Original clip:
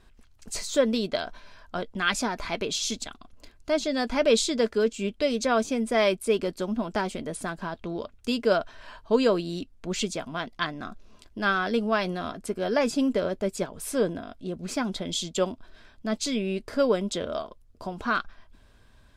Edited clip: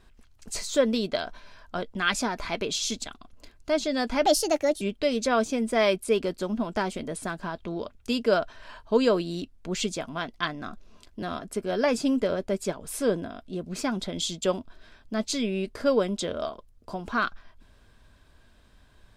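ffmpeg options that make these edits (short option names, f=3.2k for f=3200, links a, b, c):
-filter_complex "[0:a]asplit=4[a][b][c][d];[a]atrim=end=4.264[e];[b]atrim=start=4.26:end=5,asetpts=PTS-STARTPTS,asetrate=59094,aresample=44100[f];[c]atrim=start=4.996:end=11.412[g];[d]atrim=start=12.148[h];[e][f]acrossfade=d=0.004:c1=hsin:c2=hsin[i];[i][g]acrossfade=d=0.004:c1=hsin:c2=hsin[j];[j][h]acrossfade=d=0.004:c1=hsin:c2=hsin"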